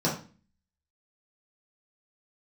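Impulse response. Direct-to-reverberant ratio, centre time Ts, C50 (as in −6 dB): −6.5 dB, 27 ms, 7.0 dB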